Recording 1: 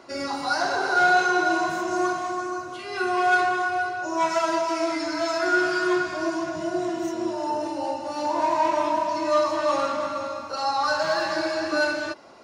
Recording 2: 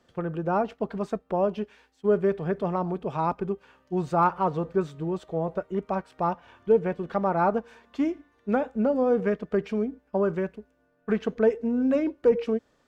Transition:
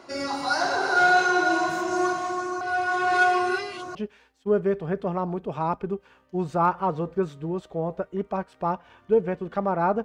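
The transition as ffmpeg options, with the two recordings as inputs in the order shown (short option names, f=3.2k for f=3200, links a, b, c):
-filter_complex "[0:a]apad=whole_dur=10.04,atrim=end=10.04,asplit=2[a][b];[a]atrim=end=2.612[c];[b]atrim=start=2.608:end=3.952,asetpts=PTS-STARTPTS,areverse[d];[1:a]atrim=start=1.528:end=7.62[e];[c][d]acrossfade=d=0.004:c1=hsin:c2=hsin[f];[f][e]acrossfade=d=0.004:c1=hsin:c2=hsin"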